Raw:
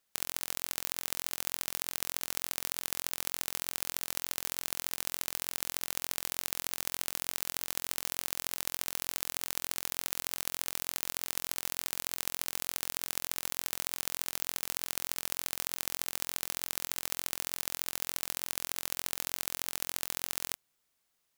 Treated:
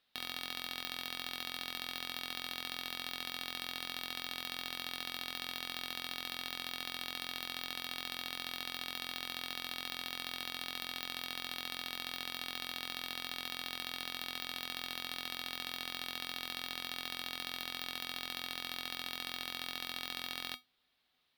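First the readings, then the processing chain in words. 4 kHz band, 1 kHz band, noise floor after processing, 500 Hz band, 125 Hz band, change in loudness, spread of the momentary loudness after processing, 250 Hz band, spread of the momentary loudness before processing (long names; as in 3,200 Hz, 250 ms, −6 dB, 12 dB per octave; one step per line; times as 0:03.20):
+2.0 dB, −1.0 dB, −51 dBFS, −5.0 dB, −5.0 dB, −5.5 dB, 0 LU, 0.0 dB, 1 LU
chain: tuned comb filter 250 Hz, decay 0.19 s, harmonics odd, mix 70%
tube saturation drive 18 dB, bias 0.4
high shelf with overshoot 5,200 Hz −11.5 dB, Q 3
level +12.5 dB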